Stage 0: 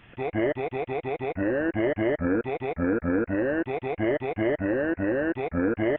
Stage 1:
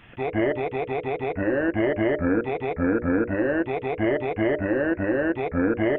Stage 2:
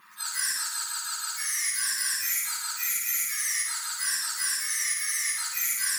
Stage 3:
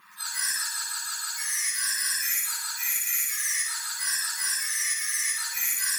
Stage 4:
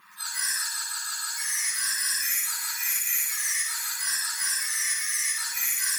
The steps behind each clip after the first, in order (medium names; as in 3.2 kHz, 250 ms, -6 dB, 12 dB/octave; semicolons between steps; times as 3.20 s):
hum notches 60/120/180/240/300/360/420/480/540/600 Hz; trim +3 dB
spectrum inverted on a logarithmic axis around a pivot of 1.8 kHz; flutter echo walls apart 9.6 m, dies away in 0.88 s; attacks held to a fixed rise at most 370 dB/s
flutter echo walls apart 9.8 m, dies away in 0.59 s
chunks repeated in reverse 502 ms, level -9 dB